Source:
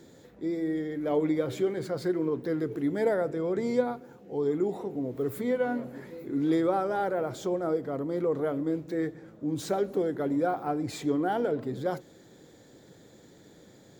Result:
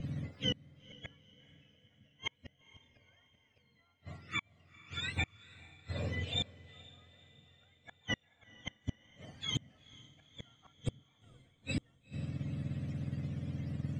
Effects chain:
frequency axis turned over on the octave scale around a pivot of 1,000 Hz
spectral tilt −4.5 dB per octave
gate with flip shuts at −30 dBFS, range −41 dB
feedback delay with all-pass diffusion 469 ms, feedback 51%, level −14 dB
expander for the loud parts 1.5 to 1, over −53 dBFS
level +9 dB

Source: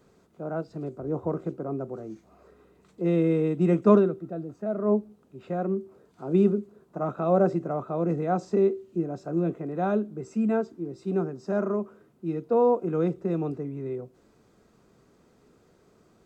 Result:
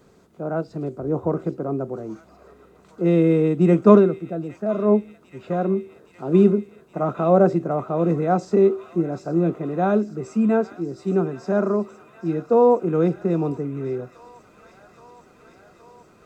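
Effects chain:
delay with a high-pass on its return 819 ms, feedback 81%, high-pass 1,600 Hz, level −12.5 dB
level +6 dB

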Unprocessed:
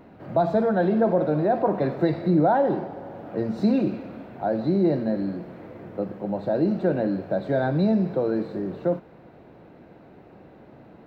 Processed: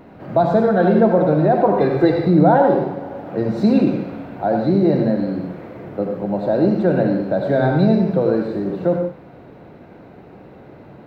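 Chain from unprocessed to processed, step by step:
0:01.76–0:02.26: comb filter 2.5 ms, depth 59%
on a send: convolution reverb, pre-delay 68 ms, DRR 4 dB
on the sum: level +5.5 dB

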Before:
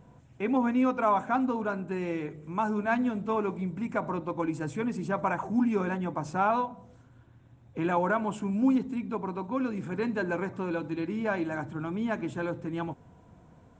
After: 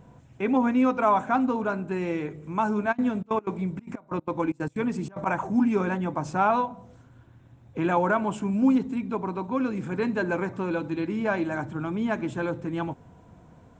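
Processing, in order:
0:02.91–0:05.25: gate pattern "x..x.xxx.x.xxxx." 186 BPM −24 dB
level +3.5 dB

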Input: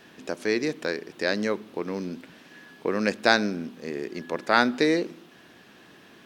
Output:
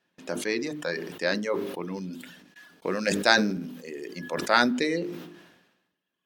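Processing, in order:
noise gate with hold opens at −38 dBFS
0:02.13–0:04.71: bass and treble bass 0 dB, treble +5 dB
convolution reverb RT60 0.35 s, pre-delay 3 ms, DRR 9.5 dB
reverb reduction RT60 1.7 s
low-shelf EQ 90 Hz −5.5 dB
mains-hum notches 50/100/150/200/250/300/350/400/450 Hz
level that may fall only so fast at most 55 dB per second
level −1.5 dB

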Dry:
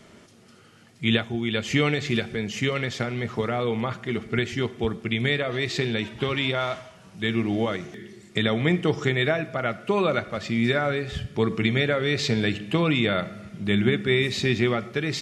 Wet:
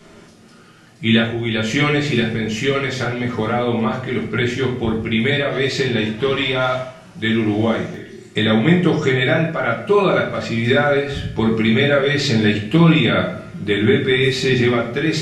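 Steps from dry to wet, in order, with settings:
rectangular room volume 49 cubic metres, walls mixed, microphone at 0.91 metres
level +2 dB

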